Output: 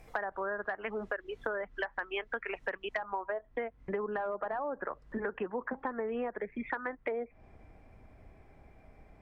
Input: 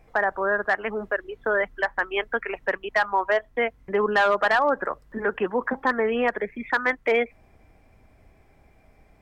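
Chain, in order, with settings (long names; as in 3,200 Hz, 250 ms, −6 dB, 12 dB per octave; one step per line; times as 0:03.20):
treble cut that deepens with the level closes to 910 Hz, closed at −17 dBFS
high-shelf EQ 3,500 Hz +9 dB, from 0:02.97 −5.5 dB, from 0:05.20 −11 dB
downward compressor 6 to 1, threshold −33 dBFS, peak gain reduction 14 dB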